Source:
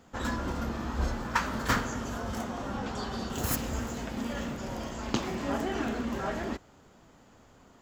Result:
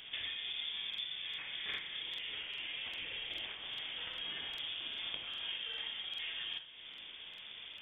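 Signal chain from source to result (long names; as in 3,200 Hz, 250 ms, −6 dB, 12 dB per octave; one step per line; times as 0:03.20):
0:02.19–0:04.54: parametric band 90 Hz −13 dB 1.6 octaves
downward compressor 10 to 1, threshold −47 dBFS, peak gain reduction 25 dB
convolution reverb RT60 0.60 s, pre-delay 39 ms, DRR 6 dB
voice inversion scrambler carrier 3,500 Hz
regular buffer underruns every 0.40 s, samples 2,048, repeat, from 0:00.89
level +6.5 dB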